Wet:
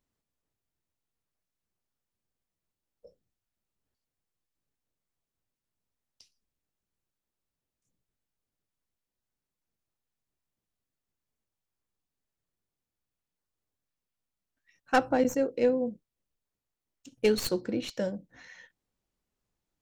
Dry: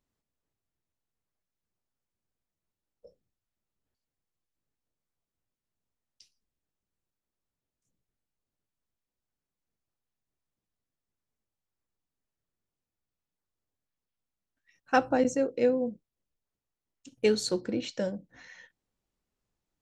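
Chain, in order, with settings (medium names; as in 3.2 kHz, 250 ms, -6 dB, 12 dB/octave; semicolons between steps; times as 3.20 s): tracing distortion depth 0.081 ms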